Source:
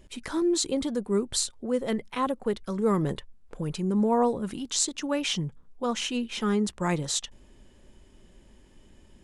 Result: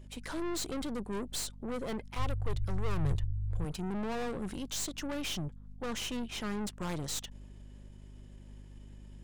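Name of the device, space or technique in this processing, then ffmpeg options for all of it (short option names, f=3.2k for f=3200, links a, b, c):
valve amplifier with mains hum: -filter_complex "[0:a]aeval=exprs='(tanh(50.1*val(0)+0.7)-tanh(0.7))/50.1':c=same,aeval=exprs='val(0)+0.00355*(sin(2*PI*50*n/s)+sin(2*PI*2*50*n/s)/2+sin(2*PI*3*50*n/s)/3+sin(2*PI*4*50*n/s)/4+sin(2*PI*5*50*n/s)/5)':c=same,asettb=1/sr,asplit=3[a][b][c];[a]atrim=end=2.164[d];[b]atrim=start=2.16:end=3.65,asetpts=PTS-STARTPTS,afade=t=in:d=0.004:c=qsin,afade=t=out:st=1.486:d=0.004:c=qsin,lowshelf=f=150:t=q:w=3:g=13[e];[c]atrim=start=3.646[f];[d][e]acrossfade=d=0.004:c1=hsin:c2=qsin[g];[g][f]acrossfade=d=0.004:c1=qsin:c2=hsin"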